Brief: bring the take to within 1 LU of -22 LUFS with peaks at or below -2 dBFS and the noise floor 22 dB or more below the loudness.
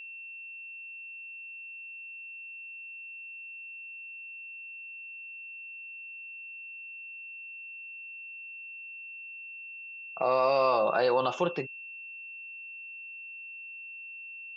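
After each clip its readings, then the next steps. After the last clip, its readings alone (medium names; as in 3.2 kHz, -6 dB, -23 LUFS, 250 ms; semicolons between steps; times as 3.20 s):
steady tone 2.7 kHz; tone level -41 dBFS; loudness -35.0 LUFS; peak level -14.5 dBFS; loudness target -22.0 LUFS
-> band-stop 2.7 kHz, Q 30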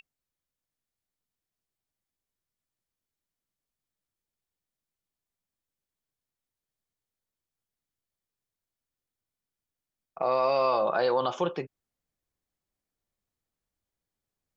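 steady tone not found; loudness -27.0 LUFS; peak level -14.5 dBFS; loudness target -22.0 LUFS
-> trim +5 dB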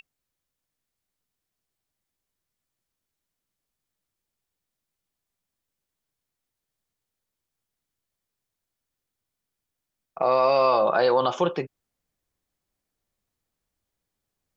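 loudness -22.0 LUFS; peak level -9.5 dBFS; noise floor -85 dBFS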